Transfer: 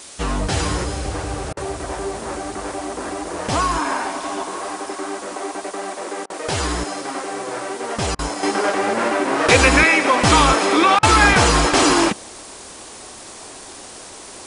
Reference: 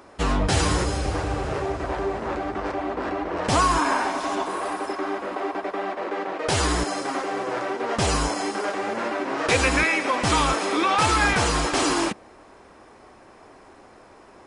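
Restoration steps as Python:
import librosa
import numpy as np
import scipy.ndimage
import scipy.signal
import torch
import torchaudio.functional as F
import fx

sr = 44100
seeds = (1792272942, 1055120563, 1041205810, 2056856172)

y = fx.fix_interpolate(x, sr, at_s=(1.53, 6.26, 8.15, 10.99), length_ms=38.0)
y = fx.noise_reduce(y, sr, print_start_s=12.76, print_end_s=13.26, reduce_db=11.0)
y = fx.gain(y, sr, db=fx.steps((0.0, 0.0), (8.43, -7.5)))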